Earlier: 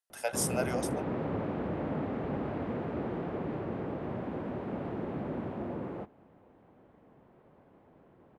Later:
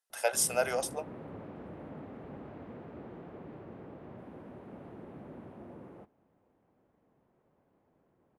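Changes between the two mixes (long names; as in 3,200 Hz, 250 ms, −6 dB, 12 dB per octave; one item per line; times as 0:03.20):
speech +4.0 dB
background −11.5 dB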